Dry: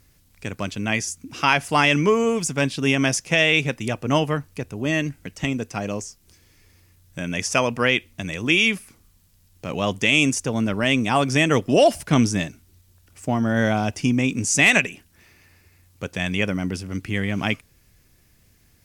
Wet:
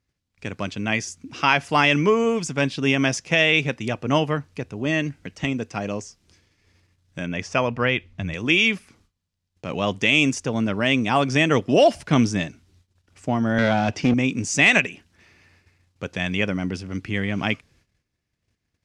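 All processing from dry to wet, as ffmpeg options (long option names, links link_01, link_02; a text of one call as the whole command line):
ffmpeg -i in.wav -filter_complex "[0:a]asettb=1/sr,asplit=3[link_01][link_02][link_03];[link_01]atrim=end=7.264[link_04];[link_02]atrim=start=7.26:end=8.34,asetpts=PTS-STARTPTS,afade=type=in:duration=0.004:curve=qsin,afade=type=out:start_time=1.076:duration=0.004:curve=qsin,lowpass=frequency=2400:poles=1,asubboost=boost=9:cutoff=140[link_05];[link_03]atrim=start=8.336[link_06];[link_04][link_05]acrossfade=duration=0.004:curve1=hsin:curve2=qsin[link_07];[link_07][link_06]acrossfade=duration=0.004:curve1=qsin:curve2=hsin,asettb=1/sr,asplit=3[link_08][link_09][link_10];[link_08]atrim=end=13.584[link_11];[link_09]atrim=start=13.58:end=14.14,asetpts=PTS-STARTPTS,afade=type=in:duration=0.004:curve=qsin,afade=type=out:start_time=0.556:duration=0.004:curve=qsin,highpass=100,lowpass=5900,aeval=exprs='clip(val(0),-1,0.0531)':channel_layout=same,acontrast=31[link_12];[link_10]atrim=start=14.136[link_13];[link_11][link_12]acrossfade=duration=0.004:curve1=hsin:curve2=qsin[link_14];[link_14][link_13]acrossfade=duration=0.004:curve1=qsin:curve2=hsin,highpass=frequency=68:poles=1,agate=range=-18dB:threshold=-56dB:ratio=16:detection=peak,lowpass=5600" out.wav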